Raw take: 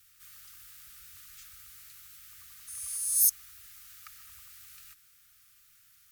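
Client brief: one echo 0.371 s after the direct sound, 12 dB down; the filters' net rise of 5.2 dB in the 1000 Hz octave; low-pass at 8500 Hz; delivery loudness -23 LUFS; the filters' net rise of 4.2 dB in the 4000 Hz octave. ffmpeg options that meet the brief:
-af "lowpass=8.5k,equalizer=f=1k:t=o:g=7,equalizer=f=4k:t=o:g=6,aecho=1:1:371:0.251,volume=9.5dB"

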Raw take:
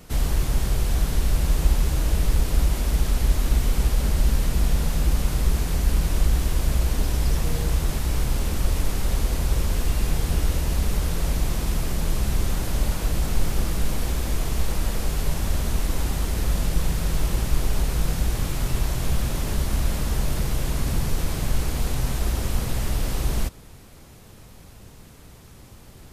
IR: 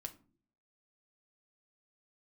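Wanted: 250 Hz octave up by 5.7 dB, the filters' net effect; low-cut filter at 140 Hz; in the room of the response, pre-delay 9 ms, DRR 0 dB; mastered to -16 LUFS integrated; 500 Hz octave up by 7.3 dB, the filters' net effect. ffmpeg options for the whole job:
-filter_complex "[0:a]highpass=140,equalizer=f=250:t=o:g=7,equalizer=f=500:t=o:g=7,asplit=2[a][b];[1:a]atrim=start_sample=2205,adelay=9[c];[b][c]afir=irnorm=-1:irlink=0,volume=3.5dB[d];[a][d]amix=inputs=2:normalize=0,volume=8.5dB"

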